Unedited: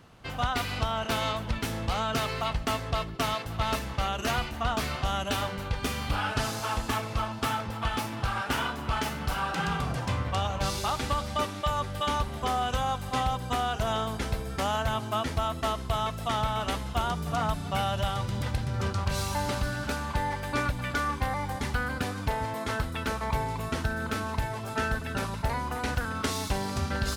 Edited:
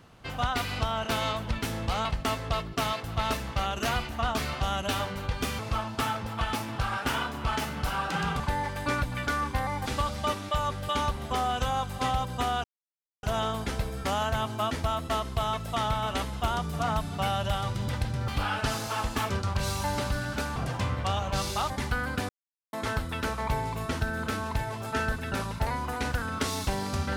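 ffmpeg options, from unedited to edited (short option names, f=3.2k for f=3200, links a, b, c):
-filter_complex "[0:a]asplit=12[a][b][c][d][e][f][g][h][i][j][k][l];[a]atrim=end=2.052[m];[b]atrim=start=2.468:end=6.012[n];[c]atrim=start=7.028:end=9.842[o];[d]atrim=start=20.068:end=21.532[p];[e]atrim=start=10.978:end=13.76,asetpts=PTS-STARTPTS,afade=t=out:st=2.778:d=0.004:c=hsin,apad=pad_dur=0.59[q];[f]atrim=start=13.76:end=18.812,asetpts=PTS-STARTPTS,afade=t=in:d=0.004:c=hsin[r];[g]atrim=start=6.008:end=7.032[s];[h]atrim=start=18.808:end=20.072[t];[i]atrim=start=9.838:end=10.982[u];[j]atrim=start=21.528:end=22.12,asetpts=PTS-STARTPTS,afade=t=out:st=0.588:d=0.004:c=hsin[v];[k]atrim=start=22.12:end=22.56,asetpts=PTS-STARTPTS,volume=0[w];[l]atrim=start=22.56,asetpts=PTS-STARTPTS,afade=t=in:d=0.004:c=hsin[x];[m][n]acrossfade=d=0.004:c1=hsin:c2=hsin[y];[y][o]acrossfade=d=0.004:c1=hsin:c2=hsin[z];[z][p]acrossfade=d=0.004:c1=hsin:c2=hsin[aa];[q][r]concat=n=2:v=0:a=1[ab];[aa][ab]acrossfade=d=0.004:c1=hsin:c2=hsin[ac];[ac][s]acrossfade=d=0.004:c1=hsin:c2=hsin[ad];[ad][t]acrossfade=d=0.004:c1=hsin:c2=hsin[ae];[ae][u]acrossfade=d=0.004:c1=hsin:c2=hsin[af];[v][w][x]concat=n=3:v=0:a=1[ag];[af][ag]acrossfade=d=0.004:c1=hsin:c2=hsin"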